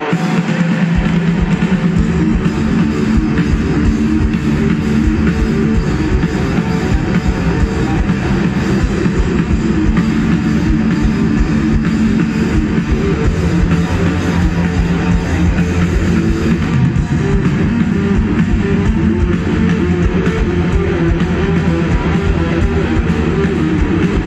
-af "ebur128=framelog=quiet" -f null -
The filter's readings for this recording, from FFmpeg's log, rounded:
Integrated loudness:
  I:         -14.0 LUFS
  Threshold: -24.0 LUFS
Loudness range:
  LRA:         0.8 LU
  Threshold: -34.0 LUFS
  LRA low:   -14.5 LUFS
  LRA high:  -13.7 LUFS